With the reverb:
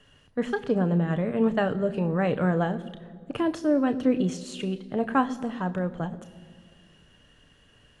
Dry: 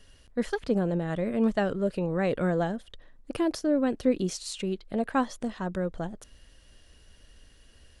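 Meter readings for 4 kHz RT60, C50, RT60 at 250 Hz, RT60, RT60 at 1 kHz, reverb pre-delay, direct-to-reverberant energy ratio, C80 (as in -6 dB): 1.3 s, 17.0 dB, 2.5 s, 2.0 s, 1.8 s, 3 ms, 9.5 dB, 18.0 dB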